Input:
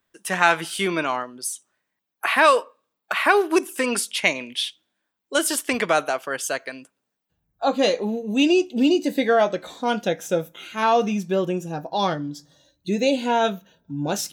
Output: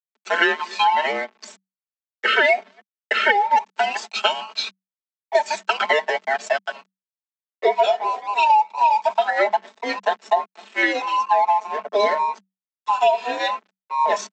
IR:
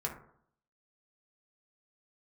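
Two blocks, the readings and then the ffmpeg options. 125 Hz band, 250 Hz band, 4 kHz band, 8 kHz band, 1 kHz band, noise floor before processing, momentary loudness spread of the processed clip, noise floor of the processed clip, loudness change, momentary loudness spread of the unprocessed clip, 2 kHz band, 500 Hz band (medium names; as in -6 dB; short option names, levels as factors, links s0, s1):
under -20 dB, -13.5 dB, +1.5 dB, -10.0 dB, +6.0 dB, -80 dBFS, 9 LU, under -85 dBFS, +1.5 dB, 11 LU, +2.5 dB, -0.5 dB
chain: -filter_complex "[0:a]afftfilt=real='real(if(between(b,1,1008),(2*floor((b-1)/48)+1)*48-b,b),0)':imag='imag(if(between(b,1,1008),(2*floor((b-1)/48)+1)*48-b,b),0)*if(between(b,1,1008),-1,1)':win_size=2048:overlap=0.75,highpass=f=330:p=1,asplit=2[s0][s1];[s1]adelay=243,lowpass=f=1100:p=1,volume=0.0708,asplit=2[s2][s3];[s3]adelay=243,lowpass=f=1100:p=1,volume=0.48,asplit=2[s4][s5];[s5]adelay=243,lowpass=f=1100:p=1,volume=0.48[s6];[s2][s4][s6]amix=inputs=3:normalize=0[s7];[s0][s7]amix=inputs=2:normalize=0,aphaser=in_gain=1:out_gain=1:delay=4.1:decay=0.43:speed=0.19:type=triangular,aresample=16000,aeval=exprs='sgn(val(0))*max(abs(val(0))-0.0141,0)':c=same,aresample=44100,lowpass=f=1600:p=1,aecho=1:1:4.4:0.8,afreqshift=190,acompressor=threshold=0.0891:ratio=6,volume=2.24"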